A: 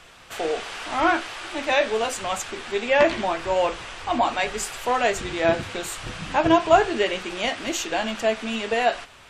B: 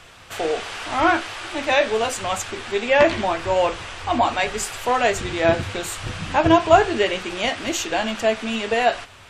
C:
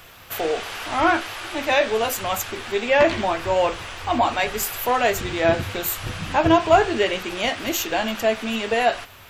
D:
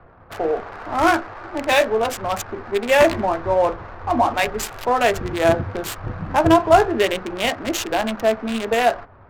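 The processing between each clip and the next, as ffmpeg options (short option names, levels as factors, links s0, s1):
-af "equalizer=f=94:t=o:w=0.53:g=9,volume=1.33"
-af "acontrast=20,aexciter=amount=8.5:drive=8:freq=12000,volume=0.562"
-filter_complex "[0:a]acrossover=split=240|1700[s0][s1][s2];[s2]acrusher=bits=3:mix=0:aa=0.5[s3];[s0][s1][s3]amix=inputs=3:normalize=0,adynamicsmooth=sensitivity=7:basefreq=1500,volume=1.33"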